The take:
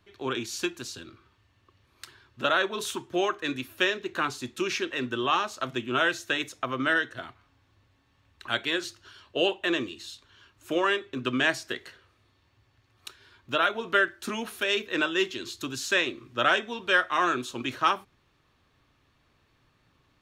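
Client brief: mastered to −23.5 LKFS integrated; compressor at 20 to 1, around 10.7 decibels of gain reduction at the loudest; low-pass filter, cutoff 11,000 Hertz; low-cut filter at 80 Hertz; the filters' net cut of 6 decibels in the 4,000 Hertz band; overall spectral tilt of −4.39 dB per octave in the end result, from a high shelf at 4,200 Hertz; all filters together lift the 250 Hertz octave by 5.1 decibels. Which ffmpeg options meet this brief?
ffmpeg -i in.wav -af "highpass=80,lowpass=11000,equalizer=frequency=250:width_type=o:gain=7,equalizer=frequency=4000:width_type=o:gain=-5,highshelf=frequency=4200:gain=-6.5,acompressor=threshold=-29dB:ratio=20,volume=12dB" out.wav

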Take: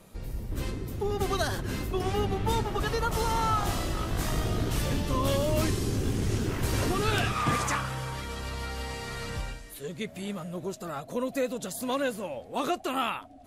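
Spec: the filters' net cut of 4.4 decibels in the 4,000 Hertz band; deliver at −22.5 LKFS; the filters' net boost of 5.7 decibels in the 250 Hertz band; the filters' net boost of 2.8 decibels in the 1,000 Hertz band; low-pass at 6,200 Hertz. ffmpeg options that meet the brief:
ffmpeg -i in.wav -af "lowpass=6200,equalizer=frequency=250:width_type=o:gain=7,equalizer=frequency=1000:width_type=o:gain=3.5,equalizer=frequency=4000:width_type=o:gain=-5.5,volume=5.5dB" out.wav

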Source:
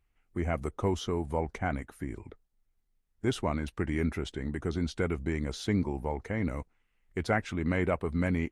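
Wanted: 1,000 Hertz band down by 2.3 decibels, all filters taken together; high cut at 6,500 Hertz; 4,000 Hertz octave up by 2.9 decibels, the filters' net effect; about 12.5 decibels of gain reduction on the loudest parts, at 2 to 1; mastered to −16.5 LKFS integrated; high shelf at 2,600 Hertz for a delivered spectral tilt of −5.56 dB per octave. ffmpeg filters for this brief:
ffmpeg -i in.wav -af "lowpass=6500,equalizer=frequency=1000:width_type=o:gain=-3,highshelf=frequency=2600:gain=-4.5,equalizer=frequency=4000:width_type=o:gain=8,acompressor=threshold=-48dB:ratio=2,volume=27.5dB" out.wav

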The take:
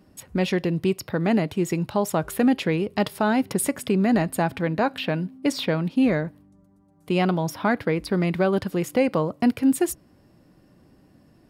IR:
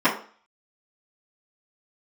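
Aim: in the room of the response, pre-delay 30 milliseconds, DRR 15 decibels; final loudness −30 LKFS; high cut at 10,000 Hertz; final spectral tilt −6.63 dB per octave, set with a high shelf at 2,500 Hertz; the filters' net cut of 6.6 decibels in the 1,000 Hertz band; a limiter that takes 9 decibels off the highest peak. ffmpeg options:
-filter_complex "[0:a]lowpass=10000,equalizer=frequency=1000:width_type=o:gain=-8.5,highshelf=frequency=2500:gain=-7,alimiter=limit=-20.5dB:level=0:latency=1,asplit=2[link_01][link_02];[1:a]atrim=start_sample=2205,adelay=30[link_03];[link_02][link_03]afir=irnorm=-1:irlink=0,volume=-34.5dB[link_04];[link_01][link_04]amix=inputs=2:normalize=0,volume=-0.5dB"

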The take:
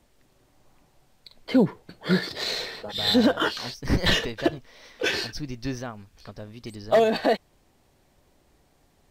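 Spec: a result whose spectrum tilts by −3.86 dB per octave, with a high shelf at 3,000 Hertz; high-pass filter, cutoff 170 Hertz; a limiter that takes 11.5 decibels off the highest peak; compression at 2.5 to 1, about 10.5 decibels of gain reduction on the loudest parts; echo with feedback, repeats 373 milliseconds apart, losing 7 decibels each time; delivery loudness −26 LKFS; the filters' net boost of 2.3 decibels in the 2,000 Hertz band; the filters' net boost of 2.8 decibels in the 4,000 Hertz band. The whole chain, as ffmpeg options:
ffmpeg -i in.wav -af "highpass=170,equalizer=frequency=2000:width_type=o:gain=3.5,highshelf=frequency=3000:gain=-6,equalizer=frequency=4000:width_type=o:gain=6.5,acompressor=threshold=-31dB:ratio=2.5,alimiter=level_in=2dB:limit=-24dB:level=0:latency=1,volume=-2dB,aecho=1:1:373|746|1119|1492|1865:0.447|0.201|0.0905|0.0407|0.0183,volume=10dB" out.wav

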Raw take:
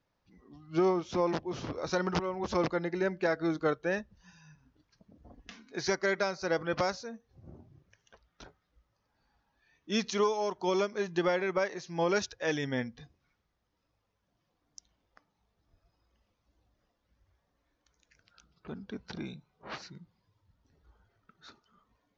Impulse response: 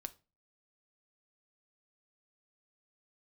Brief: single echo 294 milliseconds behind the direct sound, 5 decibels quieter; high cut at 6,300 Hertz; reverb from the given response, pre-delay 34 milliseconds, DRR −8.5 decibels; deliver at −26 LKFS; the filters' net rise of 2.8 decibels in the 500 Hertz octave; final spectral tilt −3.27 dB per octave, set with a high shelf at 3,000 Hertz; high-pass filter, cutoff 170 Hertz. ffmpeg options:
-filter_complex "[0:a]highpass=170,lowpass=6300,equalizer=frequency=500:width_type=o:gain=3.5,highshelf=frequency=3000:gain=6.5,aecho=1:1:294:0.562,asplit=2[link_01][link_02];[1:a]atrim=start_sample=2205,adelay=34[link_03];[link_02][link_03]afir=irnorm=-1:irlink=0,volume=12dB[link_04];[link_01][link_04]amix=inputs=2:normalize=0,volume=-6.5dB"

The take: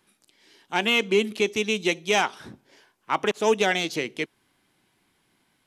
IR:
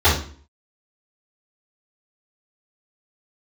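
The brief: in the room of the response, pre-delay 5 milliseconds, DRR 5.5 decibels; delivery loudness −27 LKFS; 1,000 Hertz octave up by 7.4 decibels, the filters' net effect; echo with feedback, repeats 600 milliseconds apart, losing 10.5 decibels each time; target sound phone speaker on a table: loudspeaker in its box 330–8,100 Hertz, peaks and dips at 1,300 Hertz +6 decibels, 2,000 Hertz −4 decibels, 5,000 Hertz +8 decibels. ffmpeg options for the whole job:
-filter_complex "[0:a]equalizer=frequency=1000:width_type=o:gain=8,aecho=1:1:600|1200|1800:0.299|0.0896|0.0269,asplit=2[link_01][link_02];[1:a]atrim=start_sample=2205,adelay=5[link_03];[link_02][link_03]afir=irnorm=-1:irlink=0,volume=-28dB[link_04];[link_01][link_04]amix=inputs=2:normalize=0,highpass=frequency=330:width=0.5412,highpass=frequency=330:width=1.3066,equalizer=frequency=1300:width_type=q:width=4:gain=6,equalizer=frequency=2000:width_type=q:width=4:gain=-4,equalizer=frequency=5000:width_type=q:width=4:gain=8,lowpass=frequency=8100:width=0.5412,lowpass=frequency=8100:width=1.3066,volume=-6dB"

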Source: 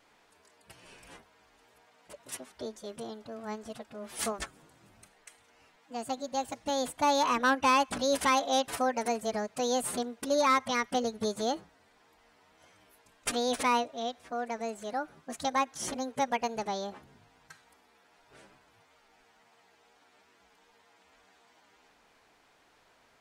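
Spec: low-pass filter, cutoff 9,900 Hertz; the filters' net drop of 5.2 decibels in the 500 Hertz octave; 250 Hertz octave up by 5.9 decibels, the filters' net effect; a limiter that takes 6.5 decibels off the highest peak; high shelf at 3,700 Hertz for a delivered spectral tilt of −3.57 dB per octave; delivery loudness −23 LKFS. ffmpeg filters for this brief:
ffmpeg -i in.wav -af "lowpass=9900,equalizer=frequency=250:width_type=o:gain=8,equalizer=frequency=500:width_type=o:gain=-7.5,highshelf=frequency=3700:gain=-3,volume=10dB,alimiter=limit=-10.5dB:level=0:latency=1" out.wav

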